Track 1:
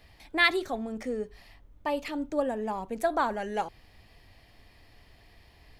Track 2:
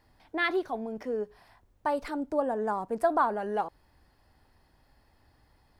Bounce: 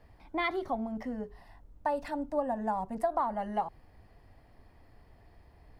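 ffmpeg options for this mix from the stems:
-filter_complex "[0:a]lowpass=1200,volume=0.944[s0];[1:a]volume=0.631[s1];[s0][s1]amix=inputs=2:normalize=0,acompressor=threshold=0.0501:ratio=4"

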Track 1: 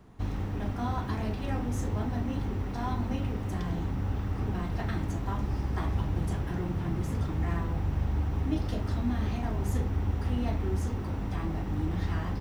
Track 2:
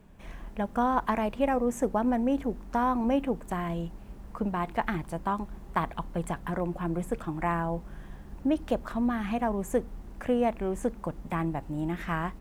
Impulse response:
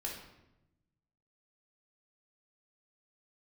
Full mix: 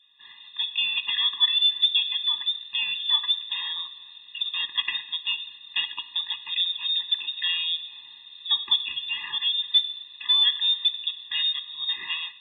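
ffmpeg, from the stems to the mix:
-filter_complex "[0:a]equalizer=f=2700:w=0.51:g=-13.5,volume=0.531,asplit=2[s0][s1];[s1]volume=0.211[s2];[1:a]acontrast=83,adynamicequalizer=threshold=0.0112:dfrequency=2600:dqfactor=0.7:tfrequency=2600:tqfactor=0.7:attack=5:release=100:ratio=0.375:range=2.5:mode=boostabove:tftype=highshelf,volume=-1,volume=0.531,asplit=3[s3][s4][s5];[s4]volume=0.473[s6];[s5]apad=whole_len=546965[s7];[s0][s7]sidechaincompress=threshold=0.0398:ratio=6:attack=38:release=1230[s8];[2:a]atrim=start_sample=2205[s9];[s2][s6]amix=inputs=2:normalize=0[s10];[s10][s9]afir=irnorm=-1:irlink=0[s11];[s8][s3][s11]amix=inputs=3:normalize=0,dynaudnorm=f=110:g=7:m=1.58,lowpass=f=3400:t=q:w=0.5098,lowpass=f=3400:t=q:w=0.6013,lowpass=f=3400:t=q:w=0.9,lowpass=f=3400:t=q:w=2.563,afreqshift=-4000,afftfilt=real='re*eq(mod(floor(b*sr/1024/410),2),0)':imag='im*eq(mod(floor(b*sr/1024/410),2),0)':win_size=1024:overlap=0.75"

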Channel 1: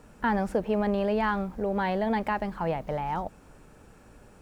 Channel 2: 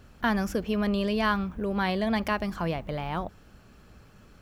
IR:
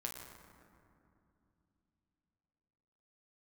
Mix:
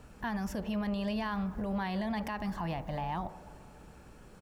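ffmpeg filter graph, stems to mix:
-filter_complex "[0:a]bandreject=f=74.34:t=h:w=4,bandreject=f=148.68:t=h:w=4,bandreject=f=223.02:t=h:w=4,bandreject=f=297.36:t=h:w=4,bandreject=f=371.7:t=h:w=4,bandreject=f=446.04:t=h:w=4,bandreject=f=520.38:t=h:w=4,bandreject=f=594.72:t=h:w=4,bandreject=f=669.06:t=h:w=4,bandreject=f=743.4:t=h:w=4,bandreject=f=817.74:t=h:w=4,bandreject=f=892.08:t=h:w=4,bandreject=f=966.42:t=h:w=4,bandreject=f=1040.76:t=h:w=4,bandreject=f=1115.1:t=h:w=4,bandreject=f=1189.44:t=h:w=4,bandreject=f=1263.78:t=h:w=4,bandreject=f=1338.12:t=h:w=4,bandreject=f=1412.46:t=h:w=4,bandreject=f=1486.8:t=h:w=4,bandreject=f=1561.14:t=h:w=4,bandreject=f=1635.48:t=h:w=4,bandreject=f=1709.82:t=h:w=4,bandreject=f=1784.16:t=h:w=4,bandreject=f=1858.5:t=h:w=4,bandreject=f=1932.84:t=h:w=4,bandreject=f=2007.18:t=h:w=4,acompressor=threshold=0.0251:ratio=6,volume=0.562,asplit=2[s0][s1];[s1]volume=0.501[s2];[1:a]adelay=0.6,volume=0.531[s3];[2:a]atrim=start_sample=2205[s4];[s2][s4]afir=irnorm=-1:irlink=0[s5];[s0][s3][s5]amix=inputs=3:normalize=0,alimiter=level_in=1.33:limit=0.0631:level=0:latency=1:release=51,volume=0.75"

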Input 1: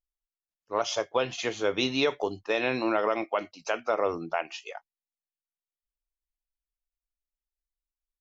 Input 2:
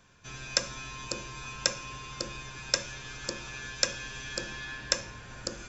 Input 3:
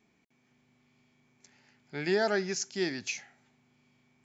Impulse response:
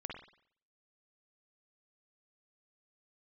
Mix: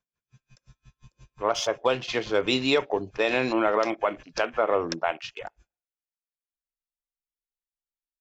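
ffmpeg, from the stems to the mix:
-filter_complex "[0:a]adelay=700,volume=1.33,asplit=2[s0][s1];[s1]volume=0.1[s2];[1:a]dynaudnorm=f=110:g=7:m=3.76,aeval=exprs='val(0)*pow(10,-34*(0.5-0.5*cos(2*PI*5.7*n/s))/20)':c=same,volume=0.376,asplit=2[s3][s4];[s4]volume=0.0891[s5];[2:a]acompressor=threshold=0.0112:ratio=6,volume=0.1[s6];[3:a]atrim=start_sample=2205[s7];[s2][s5]amix=inputs=2:normalize=0[s8];[s8][s7]afir=irnorm=-1:irlink=0[s9];[s0][s3][s6][s9]amix=inputs=4:normalize=0,afwtdn=0.00891"

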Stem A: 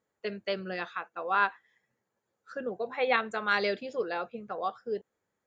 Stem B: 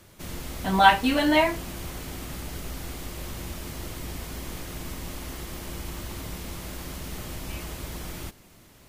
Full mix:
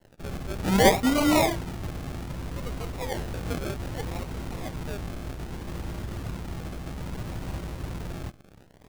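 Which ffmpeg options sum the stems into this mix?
-filter_complex "[0:a]volume=0.447[s0];[1:a]lowpass=f=3000:p=1,adynamicequalizer=threshold=0.00501:dfrequency=120:dqfactor=1.2:tfrequency=120:tqfactor=1.2:attack=5:release=100:ratio=0.375:range=4:mode=boostabove:tftype=bell,acrusher=bits=9:dc=4:mix=0:aa=0.000001,volume=1[s1];[s0][s1]amix=inputs=2:normalize=0,acrusher=samples=36:mix=1:aa=0.000001:lfo=1:lforange=21.6:lforate=0.63,asoftclip=type=tanh:threshold=0.355"

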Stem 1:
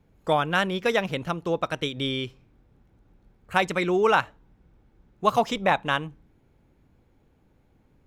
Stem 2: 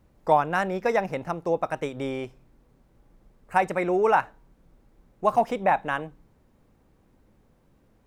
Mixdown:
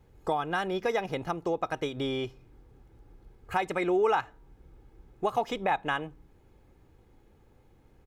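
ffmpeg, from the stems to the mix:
-filter_complex "[0:a]aecho=1:1:2.4:0.92,volume=0.794[s0];[1:a]acompressor=threshold=0.0631:ratio=6,volume=0.631,asplit=2[s1][s2];[s2]apad=whole_len=355677[s3];[s0][s3]sidechaincompress=threshold=0.0141:ratio=12:attack=8.1:release=472[s4];[s4][s1]amix=inputs=2:normalize=0"

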